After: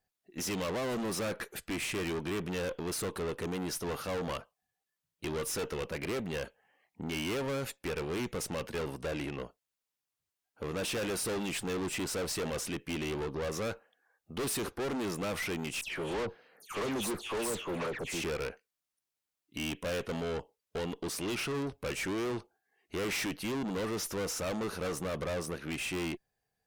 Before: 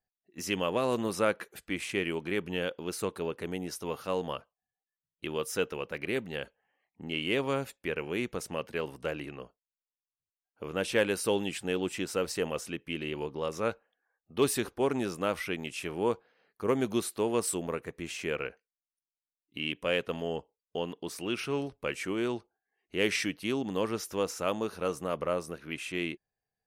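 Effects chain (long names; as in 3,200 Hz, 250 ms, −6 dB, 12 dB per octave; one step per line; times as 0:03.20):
0:15.81–0:18.24: all-pass dispersion lows, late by 144 ms, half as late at 2,200 Hz
tube saturation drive 40 dB, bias 0.4
level +8 dB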